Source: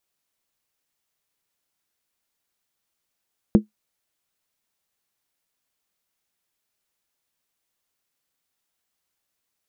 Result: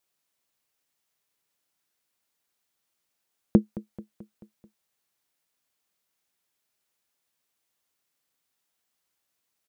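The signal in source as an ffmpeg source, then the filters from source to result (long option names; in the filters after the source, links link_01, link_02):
-f lavfi -i "aevalsrc='0.501*pow(10,-3*t/0.13)*sin(2*PI*212*t)+0.224*pow(10,-3*t/0.103)*sin(2*PI*337.9*t)+0.1*pow(10,-3*t/0.089)*sin(2*PI*452.8*t)+0.0447*pow(10,-3*t/0.086)*sin(2*PI*486.8*t)+0.02*pow(10,-3*t/0.08)*sin(2*PI*562.4*t)':duration=0.63:sample_rate=44100"
-af "highpass=frequency=85:poles=1,aecho=1:1:218|436|654|872|1090:0.126|0.0718|0.0409|0.0233|0.0133"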